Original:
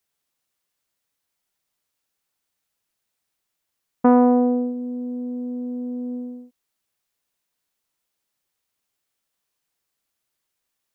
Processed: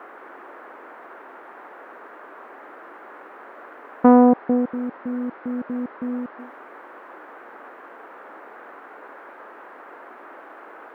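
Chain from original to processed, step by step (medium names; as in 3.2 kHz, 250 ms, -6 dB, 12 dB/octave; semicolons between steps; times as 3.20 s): 4.14–6.38 s: trance gate "x..xxx..xx.x" 187 bpm -60 dB; band noise 290–1600 Hz -45 dBFS; trim +2.5 dB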